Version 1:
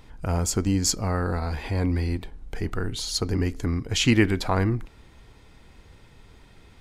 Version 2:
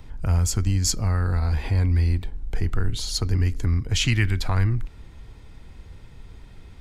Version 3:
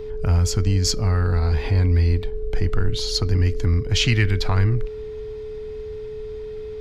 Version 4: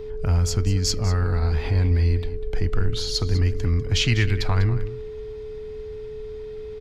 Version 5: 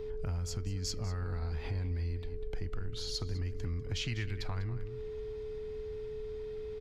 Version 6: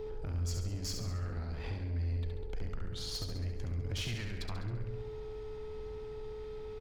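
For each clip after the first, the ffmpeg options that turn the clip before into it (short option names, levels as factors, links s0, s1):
-filter_complex "[0:a]lowshelf=f=160:g=10,acrossover=split=120|1200|3500[s0][s1][s2][s3];[s1]acompressor=threshold=0.0316:ratio=6[s4];[s0][s4][s2][s3]amix=inputs=4:normalize=0"
-af "aeval=exprs='val(0)+0.0224*sin(2*PI*430*n/s)':c=same,highshelf=f=6500:t=q:w=1.5:g=-6.5,asoftclip=type=tanh:threshold=0.398,volume=1.41"
-af "aecho=1:1:197:0.2,volume=0.794"
-af "acompressor=threshold=0.0398:ratio=4,volume=0.501"
-filter_complex "[0:a]asoftclip=type=tanh:threshold=0.0188,asplit=2[s0][s1];[s1]aecho=0:1:69|138|207|276|345|414:0.562|0.264|0.124|0.0584|0.0274|0.0129[s2];[s0][s2]amix=inputs=2:normalize=0,volume=1.12"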